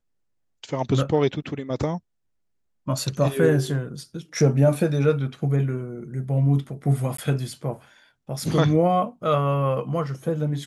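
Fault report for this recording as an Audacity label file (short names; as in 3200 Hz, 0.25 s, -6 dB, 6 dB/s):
7.170000	7.180000	gap 14 ms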